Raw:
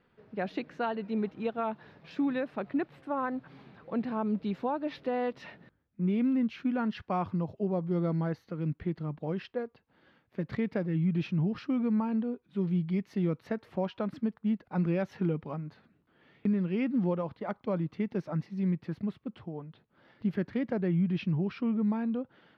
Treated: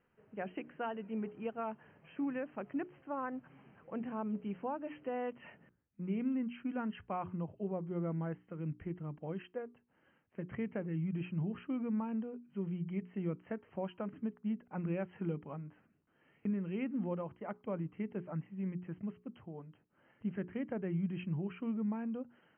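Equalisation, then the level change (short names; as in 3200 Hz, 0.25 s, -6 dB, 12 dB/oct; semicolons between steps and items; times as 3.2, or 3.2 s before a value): brick-wall FIR low-pass 3200 Hz; notches 60/120/180/240/300/360/420 Hz; -7.0 dB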